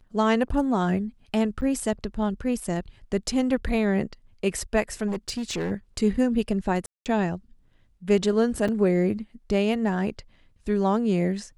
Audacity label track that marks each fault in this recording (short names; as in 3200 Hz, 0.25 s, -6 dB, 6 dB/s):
1.610000	1.620000	gap 8.9 ms
5.070000	5.720000	clipped -24.5 dBFS
6.860000	7.060000	gap 0.198 s
8.680000	8.690000	gap 5.4 ms